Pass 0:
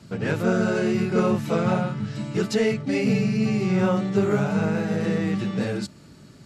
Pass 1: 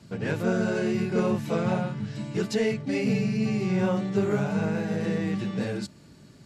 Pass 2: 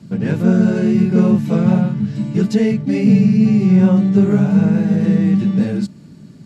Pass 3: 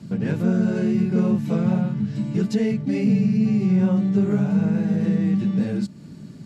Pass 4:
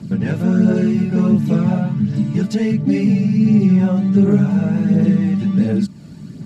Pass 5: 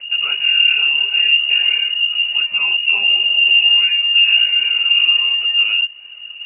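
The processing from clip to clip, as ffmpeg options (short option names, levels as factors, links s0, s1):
-af "bandreject=f=1300:w=13,volume=0.668"
-af "equalizer=f=190:t=o:w=1.4:g=13.5,volume=1.26"
-af "acompressor=threshold=0.0355:ratio=1.5"
-af "aphaser=in_gain=1:out_gain=1:delay=1.6:decay=0.39:speed=1.4:type=triangular,volume=1.58"
-af "lowpass=f=2600:t=q:w=0.5098,lowpass=f=2600:t=q:w=0.6013,lowpass=f=2600:t=q:w=0.9,lowpass=f=2600:t=q:w=2.563,afreqshift=-3000"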